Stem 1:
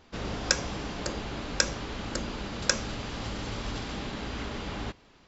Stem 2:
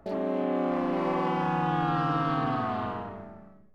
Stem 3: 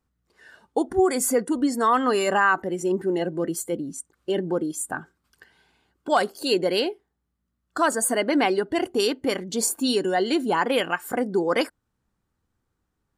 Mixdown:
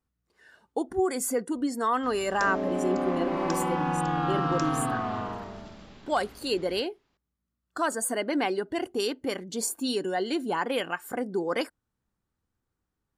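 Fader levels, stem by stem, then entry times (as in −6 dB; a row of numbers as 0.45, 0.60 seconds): −15.5, −0.5, −6.0 decibels; 1.90, 2.35, 0.00 seconds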